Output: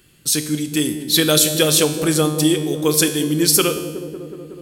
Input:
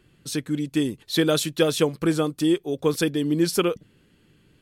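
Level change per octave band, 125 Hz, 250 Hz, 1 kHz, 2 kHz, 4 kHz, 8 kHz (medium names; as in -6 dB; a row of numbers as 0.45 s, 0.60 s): +6.0 dB, +4.0 dB, +5.0 dB, +6.5 dB, +10.5 dB, +16.0 dB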